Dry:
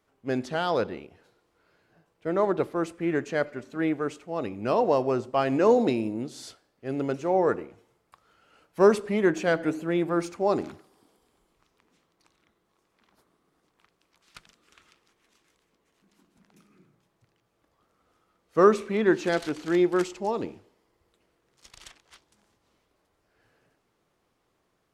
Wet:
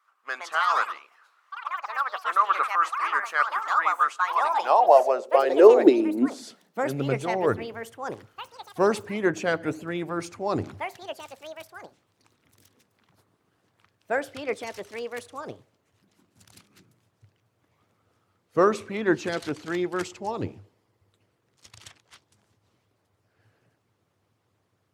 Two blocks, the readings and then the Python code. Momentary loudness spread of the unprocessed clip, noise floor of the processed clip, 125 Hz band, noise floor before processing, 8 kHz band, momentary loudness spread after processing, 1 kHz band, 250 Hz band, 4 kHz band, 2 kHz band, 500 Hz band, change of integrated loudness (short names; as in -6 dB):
13 LU, -72 dBFS, -1.0 dB, -74 dBFS, +2.5 dB, 21 LU, +7.0 dB, -0.5 dB, +3.0 dB, +5.5 dB, +1.5 dB, +1.5 dB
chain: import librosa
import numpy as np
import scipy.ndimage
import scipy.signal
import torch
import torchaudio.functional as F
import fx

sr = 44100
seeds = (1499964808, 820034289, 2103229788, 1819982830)

y = fx.hpss(x, sr, part='harmonic', gain_db=-9)
y = fx.echo_pitch(y, sr, ms=191, semitones=5, count=3, db_per_echo=-6.0)
y = fx.filter_sweep_highpass(y, sr, from_hz=1200.0, to_hz=100.0, start_s=4.2, end_s=7.51, q=6.1)
y = F.gain(torch.from_numpy(y), 2.0).numpy()